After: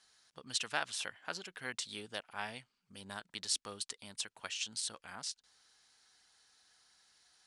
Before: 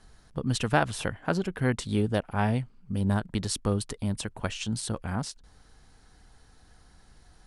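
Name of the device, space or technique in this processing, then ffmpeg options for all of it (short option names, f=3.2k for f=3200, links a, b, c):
piezo pickup straight into a mixer: -af "lowpass=5.5k,aderivative,volume=5dB"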